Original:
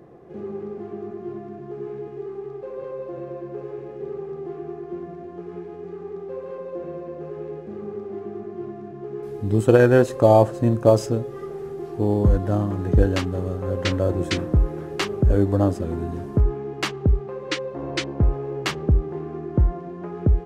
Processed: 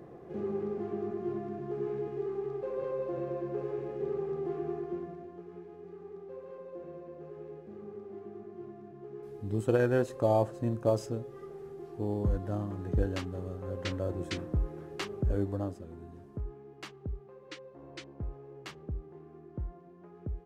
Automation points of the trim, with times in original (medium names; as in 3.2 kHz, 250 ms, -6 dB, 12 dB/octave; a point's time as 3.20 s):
4.77 s -2 dB
5.47 s -12 dB
15.43 s -12 dB
15.88 s -19.5 dB